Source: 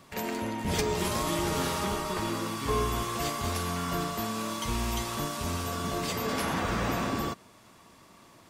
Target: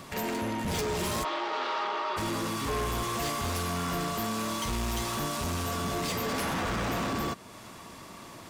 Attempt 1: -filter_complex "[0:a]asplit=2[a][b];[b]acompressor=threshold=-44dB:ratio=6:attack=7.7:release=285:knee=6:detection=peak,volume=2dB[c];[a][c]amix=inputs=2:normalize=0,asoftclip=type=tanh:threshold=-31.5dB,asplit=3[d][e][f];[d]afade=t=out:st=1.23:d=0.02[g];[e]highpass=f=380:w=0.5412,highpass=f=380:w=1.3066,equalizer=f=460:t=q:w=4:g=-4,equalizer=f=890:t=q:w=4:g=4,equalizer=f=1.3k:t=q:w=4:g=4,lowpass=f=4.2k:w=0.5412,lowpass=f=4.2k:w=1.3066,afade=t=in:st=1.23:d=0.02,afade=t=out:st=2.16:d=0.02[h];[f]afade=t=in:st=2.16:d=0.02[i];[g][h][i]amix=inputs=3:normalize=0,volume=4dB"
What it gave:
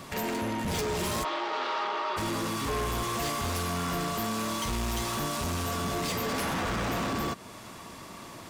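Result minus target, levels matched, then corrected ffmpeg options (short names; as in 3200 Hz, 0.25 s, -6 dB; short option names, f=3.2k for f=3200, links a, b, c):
compressor: peak gain reduction -8.5 dB
-filter_complex "[0:a]asplit=2[a][b];[b]acompressor=threshold=-54dB:ratio=6:attack=7.7:release=285:knee=6:detection=peak,volume=2dB[c];[a][c]amix=inputs=2:normalize=0,asoftclip=type=tanh:threshold=-31.5dB,asplit=3[d][e][f];[d]afade=t=out:st=1.23:d=0.02[g];[e]highpass=f=380:w=0.5412,highpass=f=380:w=1.3066,equalizer=f=460:t=q:w=4:g=-4,equalizer=f=890:t=q:w=4:g=4,equalizer=f=1.3k:t=q:w=4:g=4,lowpass=f=4.2k:w=0.5412,lowpass=f=4.2k:w=1.3066,afade=t=in:st=1.23:d=0.02,afade=t=out:st=2.16:d=0.02[h];[f]afade=t=in:st=2.16:d=0.02[i];[g][h][i]amix=inputs=3:normalize=0,volume=4dB"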